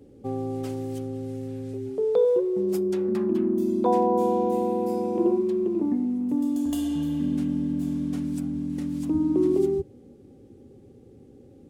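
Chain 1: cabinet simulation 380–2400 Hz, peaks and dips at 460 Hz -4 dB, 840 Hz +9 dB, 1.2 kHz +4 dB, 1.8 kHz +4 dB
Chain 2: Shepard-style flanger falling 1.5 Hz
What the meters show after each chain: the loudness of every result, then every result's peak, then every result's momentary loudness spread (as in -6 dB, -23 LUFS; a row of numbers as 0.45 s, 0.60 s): -29.0 LUFS, -31.5 LUFS; -12.0 dBFS, -16.0 dBFS; 14 LU, 11 LU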